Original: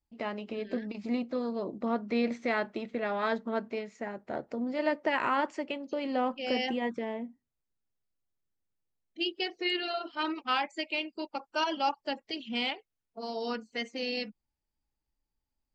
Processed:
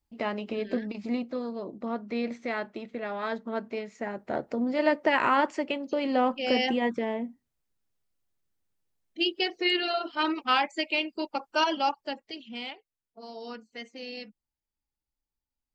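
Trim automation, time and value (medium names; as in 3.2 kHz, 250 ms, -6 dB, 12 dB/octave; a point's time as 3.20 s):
0.67 s +4.5 dB
1.61 s -2 dB
3.30 s -2 dB
4.26 s +5 dB
11.63 s +5 dB
12.59 s -6 dB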